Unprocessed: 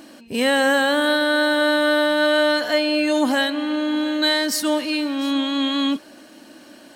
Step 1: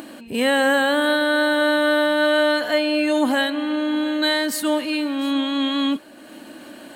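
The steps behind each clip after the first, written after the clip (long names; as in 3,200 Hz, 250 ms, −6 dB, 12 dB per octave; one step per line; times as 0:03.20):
parametric band 5,500 Hz −11.5 dB 0.47 octaves
upward compression, threshold −32 dBFS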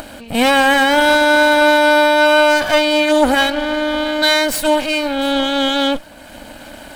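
lower of the sound and its delayed copy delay 1.3 ms
level +7 dB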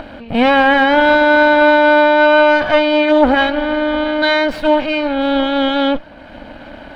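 high-frequency loss of the air 330 metres
level +3 dB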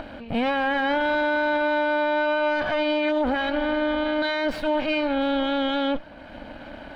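brickwall limiter −11.5 dBFS, peak gain reduction 10 dB
level −5.5 dB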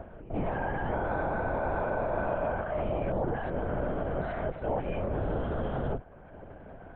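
low-pass filter 1,200 Hz 12 dB per octave
linear-prediction vocoder at 8 kHz whisper
level −6.5 dB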